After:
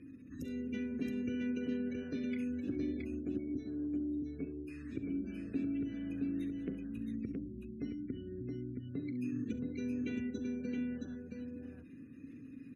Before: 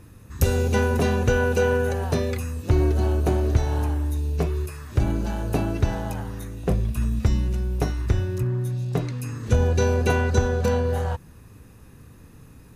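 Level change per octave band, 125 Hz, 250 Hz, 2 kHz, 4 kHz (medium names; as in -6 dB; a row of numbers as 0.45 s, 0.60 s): -25.5 dB, -6.5 dB, -21.0 dB, under -20 dB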